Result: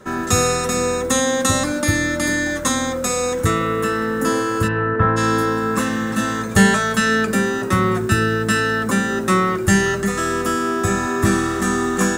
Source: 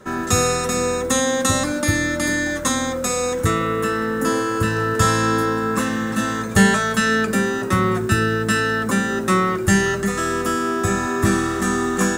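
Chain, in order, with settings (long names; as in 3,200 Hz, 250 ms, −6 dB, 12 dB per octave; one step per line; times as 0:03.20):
0:04.67–0:05.16: low-pass filter 3,000 Hz → 1,600 Hz 24 dB per octave
level +1 dB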